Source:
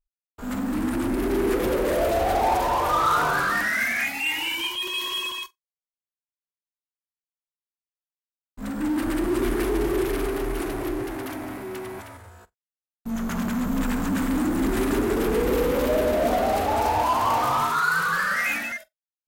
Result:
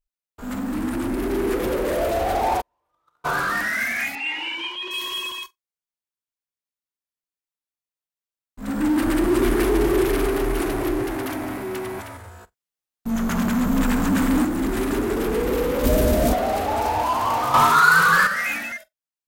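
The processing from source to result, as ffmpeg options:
-filter_complex "[0:a]asplit=3[a][b][c];[a]afade=t=out:st=2.6:d=0.02[d];[b]agate=range=-52dB:threshold=-15dB:ratio=16:release=100:detection=peak,afade=t=in:st=2.6:d=0.02,afade=t=out:st=3.24:d=0.02[e];[c]afade=t=in:st=3.24:d=0.02[f];[d][e][f]amix=inputs=3:normalize=0,asettb=1/sr,asplit=3[g][h][i];[g]atrim=end=4.154[j];[h]atrim=start=4.15:end=4.91,asetpts=PTS-STARTPTS,afade=t=in:d=0.004:c=qsin,afade=t=out:st=0.756:d=0.004:c=qsin,highpass=250,lowpass=3.5k[k];[i]atrim=start=4.906[l];[j][k]acrossfade=d=0.004:c1=hsin:c2=qsin[m];[m][l]acrossfade=d=0.004:c1=qsin:c2=hsin,asettb=1/sr,asplit=3[n][o][p];[n]atrim=end=8.684[q];[o]atrim=start=8.68:end=14.45,asetpts=PTS-STARTPTS,afade=t=in:d=0.004:c=qsin,afade=t=out:st=5.766:d=0.004:c=qsin,acontrast=21[r];[p]atrim=start=14.446[s];[q][r]acrossfade=d=0.004:c1=hsin:c2=qsin[t];[t][s]acrossfade=d=0.004:c1=qsin:c2=hsin,asplit=3[u][v][w];[u]afade=t=out:st=15.83:d=0.02[x];[v]bass=f=250:g=13,treble=f=4k:g=10,afade=t=in:st=15.83:d=0.02,afade=t=out:st=16.32:d=0.02[y];[w]afade=t=in:st=16.32:d=0.02[z];[x][y][z]amix=inputs=3:normalize=0,asplit=3[aa][ab][ac];[aa]atrim=end=17.542[ad];[ab]atrim=start=17.538:end=18.272,asetpts=PTS-STARTPTS,volume=8dB[ae];[ac]atrim=start=18.268[af];[ad][ae]acrossfade=d=0.004:c1=hsin:c2=hsin[ag];[ag][af]acrossfade=d=0.004:c1=hsin:c2=hsin"

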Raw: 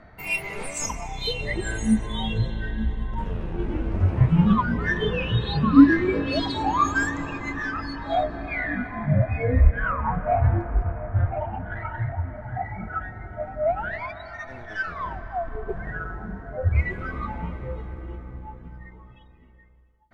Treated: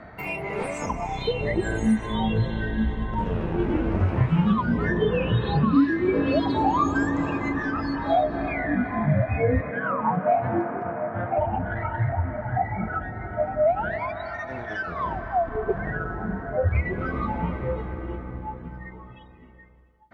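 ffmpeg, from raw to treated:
-filter_complex "[0:a]asettb=1/sr,asplit=3[a][b][c];[a]atrim=end=9.604[d];[b]atrim=start=9.6:end=11.38,asetpts=PTS-STARTPTS,afade=t=in:d=0.004:c=qsin,afade=t=out:st=1.776:d=0.004:c=qsin,highpass=f=160:w=0.5412,highpass=f=160:w=1.3066[e];[c]atrim=start=11.376[f];[d][e]acrossfade=d=0.004:c1=hsin:c2=qsin[g];[g][f]acrossfade=d=0.004:c1=qsin:c2=hsin,highpass=f=130:p=1,highshelf=f=4k:g=-10.5,acrossover=split=920|2600[h][i][j];[h]acompressor=threshold=-27dB:ratio=4[k];[i]acompressor=threshold=-44dB:ratio=4[l];[j]acompressor=threshold=-53dB:ratio=4[m];[k][l][m]amix=inputs=3:normalize=0,volume=8dB"

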